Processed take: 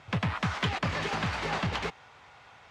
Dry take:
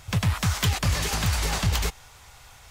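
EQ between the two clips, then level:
band-pass filter 170–2,600 Hz
0.0 dB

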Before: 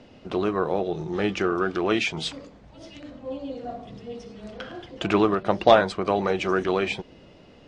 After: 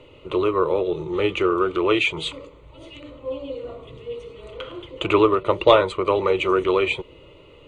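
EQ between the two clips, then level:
phaser with its sweep stopped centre 1,100 Hz, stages 8
+6.0 dB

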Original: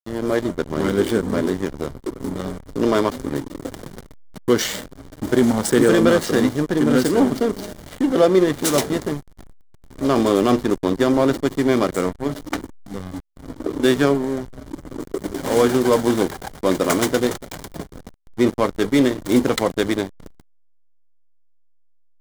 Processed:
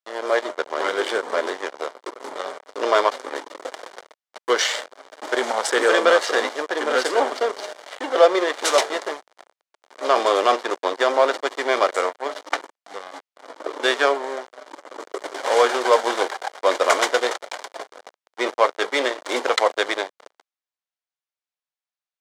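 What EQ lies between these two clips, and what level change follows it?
high-pass filter 550 Hz 24 dB per octave
high-frequency loss of the air 79 metres
+5.5 dB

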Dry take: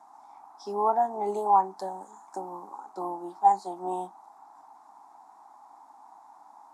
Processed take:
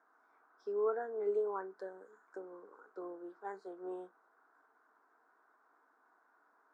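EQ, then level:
pair of resonant band-passes 840 Hz, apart 1.7 octaves
+4.0 dB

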